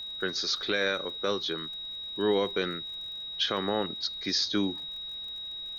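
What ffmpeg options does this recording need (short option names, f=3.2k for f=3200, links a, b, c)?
-af "adeclick=t=4,bandreject=f=3.8k:w=30,agate=range=-21dB:threshold=-31dB"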